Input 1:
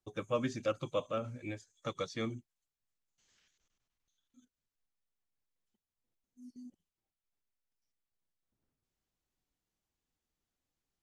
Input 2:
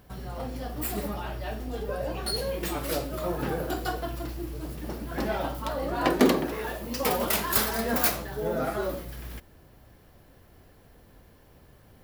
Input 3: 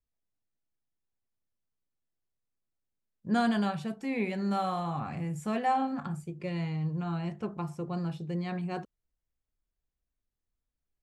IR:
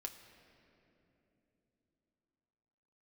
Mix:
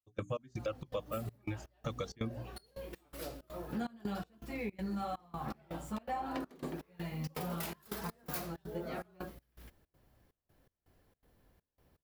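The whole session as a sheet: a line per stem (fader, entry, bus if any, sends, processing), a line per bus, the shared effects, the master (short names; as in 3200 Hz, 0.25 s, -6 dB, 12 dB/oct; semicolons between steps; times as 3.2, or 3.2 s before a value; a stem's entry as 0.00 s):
+2.5 dB, 0.00 s, no send, reverb removal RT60 1.7 s; bell 100 Hz +10.5 dB 2 oct; notches 60/120/180/240/300 Hz
-14.0 dB, 0.30 s, no send, dry
-2.5 dB, 0.45 s, no send, ensemble effect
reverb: off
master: step gate "..xx..xxx.xxxx" 163 bpm -24 dB; compressor 6:1, threshold -34 dBFS, peak gain reduction 10.5 dB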